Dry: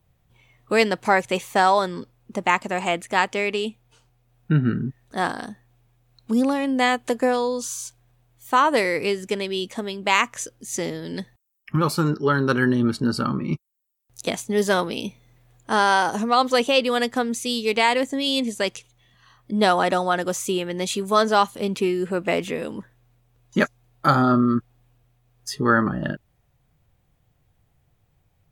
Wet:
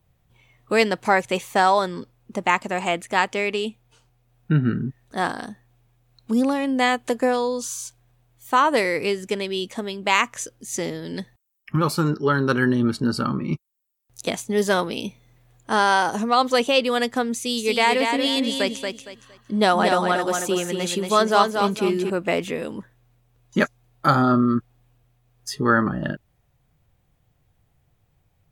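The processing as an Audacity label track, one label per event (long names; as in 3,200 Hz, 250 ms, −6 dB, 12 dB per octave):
17.340000	22.100000	repeating echo 231 ms, feedback 27%, level −5 dB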